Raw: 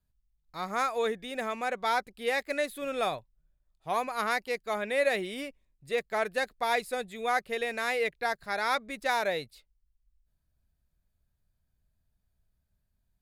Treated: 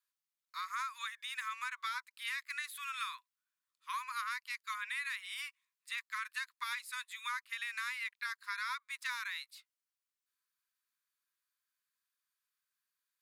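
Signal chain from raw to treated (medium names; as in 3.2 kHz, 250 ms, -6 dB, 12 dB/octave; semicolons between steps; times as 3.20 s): Chebyshev high-pass 990 Hz, order 10; compression, threshold -38 dBFS, peak gain reduction 12 dB; trim +1.5 dB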